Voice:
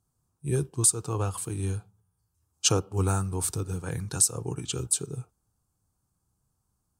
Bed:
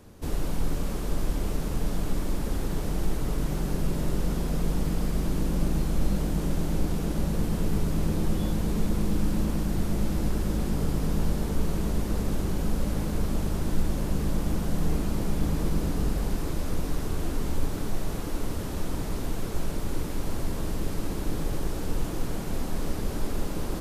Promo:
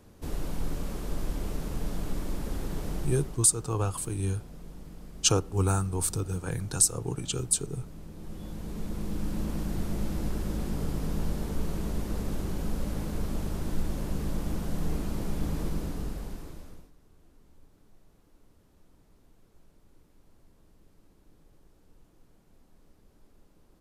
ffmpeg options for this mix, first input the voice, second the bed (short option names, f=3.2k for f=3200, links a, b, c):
-filter_complex "[0:a]adelay=2600,volume=0dB[a];[1:a]volume=9.5dB,afade=t=out:st=2.95:d=0.49:silence=0.199526,afade=t=in:st=8.13:d=1.49:silence=0.199526,afade=t=out:st=15.6:d=1.31:silence=0.0473151[b];[a][b]amix=inputs=2:normalize=0"